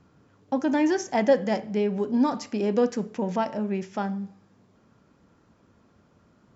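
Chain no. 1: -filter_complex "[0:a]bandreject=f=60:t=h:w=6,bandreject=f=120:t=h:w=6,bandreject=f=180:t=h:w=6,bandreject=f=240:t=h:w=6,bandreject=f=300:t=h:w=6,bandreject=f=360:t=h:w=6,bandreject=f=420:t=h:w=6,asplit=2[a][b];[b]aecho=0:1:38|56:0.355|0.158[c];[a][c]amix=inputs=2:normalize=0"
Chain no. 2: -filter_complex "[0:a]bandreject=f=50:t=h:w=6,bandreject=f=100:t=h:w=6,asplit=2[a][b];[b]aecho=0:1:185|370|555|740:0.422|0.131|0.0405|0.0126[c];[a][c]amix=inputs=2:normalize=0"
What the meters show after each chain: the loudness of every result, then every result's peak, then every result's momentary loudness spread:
-26.0, -25.5 LUFS; -9.0, -9.5 dBFS; 9, 9 LU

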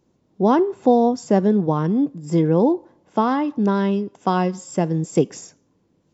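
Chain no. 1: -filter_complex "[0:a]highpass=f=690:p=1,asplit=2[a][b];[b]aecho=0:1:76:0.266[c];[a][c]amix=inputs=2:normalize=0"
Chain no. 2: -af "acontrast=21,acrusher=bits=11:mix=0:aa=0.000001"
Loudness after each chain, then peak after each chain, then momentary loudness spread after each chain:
-26.0, -16.0 LUFS; -8.5, -1.5 dBFS; 8, 6 LU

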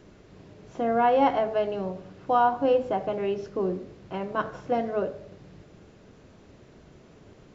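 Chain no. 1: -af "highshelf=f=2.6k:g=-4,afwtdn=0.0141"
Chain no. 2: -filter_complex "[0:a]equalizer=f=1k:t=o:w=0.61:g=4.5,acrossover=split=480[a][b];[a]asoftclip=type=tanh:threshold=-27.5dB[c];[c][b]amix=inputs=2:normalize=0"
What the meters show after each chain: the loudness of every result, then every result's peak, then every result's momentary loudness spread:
-27.0, -26.0 LUFS; -10.0, -8.5 dBFS; 14, 16 LU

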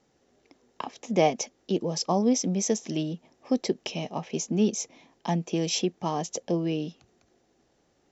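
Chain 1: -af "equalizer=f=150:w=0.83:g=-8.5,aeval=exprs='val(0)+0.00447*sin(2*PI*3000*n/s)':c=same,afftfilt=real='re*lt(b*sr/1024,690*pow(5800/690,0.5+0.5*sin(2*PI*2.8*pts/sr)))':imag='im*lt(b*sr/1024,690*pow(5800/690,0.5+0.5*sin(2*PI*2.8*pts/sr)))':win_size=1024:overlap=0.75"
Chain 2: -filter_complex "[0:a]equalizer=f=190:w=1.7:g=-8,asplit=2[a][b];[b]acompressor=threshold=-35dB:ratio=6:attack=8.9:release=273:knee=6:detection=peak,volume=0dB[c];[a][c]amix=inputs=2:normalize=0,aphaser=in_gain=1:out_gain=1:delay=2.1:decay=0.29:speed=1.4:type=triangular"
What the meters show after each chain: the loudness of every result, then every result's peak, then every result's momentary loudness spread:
-32.0, -28.0 LUFS; -11.0, -8.0 dBFS; 23, 11 LU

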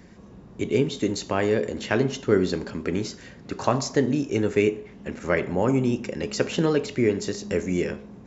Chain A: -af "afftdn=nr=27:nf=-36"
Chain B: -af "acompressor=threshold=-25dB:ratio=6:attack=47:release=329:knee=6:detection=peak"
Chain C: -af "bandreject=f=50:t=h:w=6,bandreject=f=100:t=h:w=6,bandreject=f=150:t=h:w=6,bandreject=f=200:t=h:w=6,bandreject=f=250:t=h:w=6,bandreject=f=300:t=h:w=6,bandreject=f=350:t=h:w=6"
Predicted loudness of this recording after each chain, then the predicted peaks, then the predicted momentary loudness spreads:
-25.0, -29.0, -25.5 LUFS; -4.5, -7.0, -5.0 dBFS; 8, 8, 8 LU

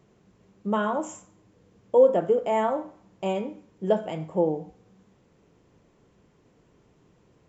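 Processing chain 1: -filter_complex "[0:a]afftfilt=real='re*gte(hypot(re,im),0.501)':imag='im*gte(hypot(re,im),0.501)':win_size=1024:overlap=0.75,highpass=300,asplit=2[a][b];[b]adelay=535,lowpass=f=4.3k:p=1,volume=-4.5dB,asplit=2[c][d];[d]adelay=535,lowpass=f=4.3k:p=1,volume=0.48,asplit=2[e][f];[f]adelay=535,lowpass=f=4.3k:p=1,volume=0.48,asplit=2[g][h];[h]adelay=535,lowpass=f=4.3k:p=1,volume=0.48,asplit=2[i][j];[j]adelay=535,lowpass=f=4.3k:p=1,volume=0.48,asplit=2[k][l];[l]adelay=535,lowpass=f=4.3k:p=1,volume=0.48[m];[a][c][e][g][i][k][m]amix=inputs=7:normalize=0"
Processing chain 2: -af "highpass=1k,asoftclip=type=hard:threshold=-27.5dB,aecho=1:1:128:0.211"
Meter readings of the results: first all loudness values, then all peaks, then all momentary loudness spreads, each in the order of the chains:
-26.5, -36.5 LUFS; -9.5, -26.0 dBFS; 23, 14 LU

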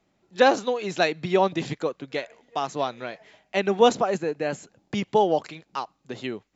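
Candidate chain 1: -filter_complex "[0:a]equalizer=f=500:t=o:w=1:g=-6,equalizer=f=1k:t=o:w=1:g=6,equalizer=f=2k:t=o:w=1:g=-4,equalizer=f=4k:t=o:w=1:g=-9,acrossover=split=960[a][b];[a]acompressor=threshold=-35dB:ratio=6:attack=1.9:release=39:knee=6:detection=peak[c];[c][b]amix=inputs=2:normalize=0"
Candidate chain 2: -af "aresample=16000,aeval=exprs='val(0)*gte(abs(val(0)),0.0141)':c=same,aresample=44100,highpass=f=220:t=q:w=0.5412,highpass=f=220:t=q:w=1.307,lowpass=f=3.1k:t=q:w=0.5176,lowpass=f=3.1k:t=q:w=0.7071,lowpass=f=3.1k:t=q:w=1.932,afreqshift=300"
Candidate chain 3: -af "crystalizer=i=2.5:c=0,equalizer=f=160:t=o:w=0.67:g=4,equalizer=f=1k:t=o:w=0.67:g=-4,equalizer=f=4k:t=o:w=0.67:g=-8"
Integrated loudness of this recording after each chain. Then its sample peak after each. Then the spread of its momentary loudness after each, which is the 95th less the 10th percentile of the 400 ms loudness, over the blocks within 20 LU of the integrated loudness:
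-33.0, -25.0, -25.0 LUFS; -12.5, -5.5, -5.0 dBFS; 13, 16, 16 LU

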